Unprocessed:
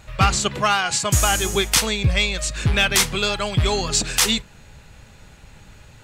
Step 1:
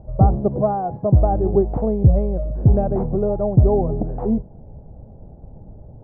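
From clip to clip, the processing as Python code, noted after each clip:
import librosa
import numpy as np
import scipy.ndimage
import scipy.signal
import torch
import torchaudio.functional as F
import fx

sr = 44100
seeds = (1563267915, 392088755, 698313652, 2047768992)

y = scipy.signal.sosfilt(scipy.signal.cheby1(4, 1.0, 720.0, 'lowpass', fs=sr, output='sos'), x)
y = y * 10.0 ** (7.0 / 20.0)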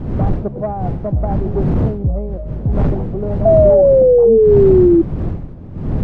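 y = fx.dmg_wind(x, sr, seeds[0], corner_hz=160.0, level_db=-15.0)
y = 10.0 ** (-7.0 / 20.0) * np.tanh(y / 10.0 ** (-7.0 / 20.0))
y = fx.spec_paint(y, sr, seeds[1], shape='fall', start_s=3.45, length_s=1.57, low_hz=330.0, high_hz=670.0, level_db=-7.0)
y = y * 10.0 ** (-2.0 / 20.0)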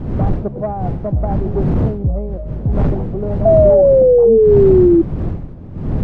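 y = x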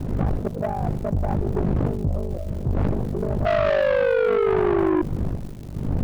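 y = fx.dmg_crackle(x, sr, seeds[2], per_s=420.0, level_db=-35.0)
y = 10.0 ** (-15.0 / 20.0) * np.tanh(y / 10.0 ** (-15.0 / 20.0))
y = y * np.sin(2.0 * np.pi * 25.0 * np.arange(len(y)) / sr)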